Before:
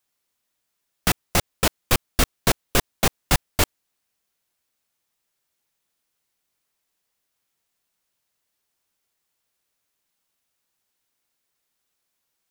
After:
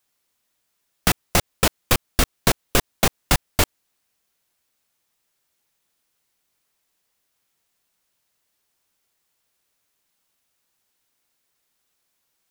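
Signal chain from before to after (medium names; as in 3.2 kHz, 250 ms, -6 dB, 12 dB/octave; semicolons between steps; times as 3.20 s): compression, threshold -17 dBFS, peak gain reduction 5 dB; trim +4 dB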